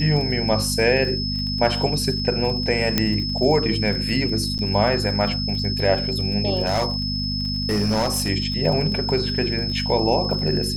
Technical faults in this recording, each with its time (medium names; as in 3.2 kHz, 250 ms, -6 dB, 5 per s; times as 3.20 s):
crackle 25 per s -28 dBFS
hum 50 Hz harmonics 5 -27 dBFS
whine 5.2 kHz -26 dBFS
2.98 s: pop -3 dBFS
4.58–4.59 s: dropout 8.4 ms
6.65–8.29 s: clipped -16.5 dBFS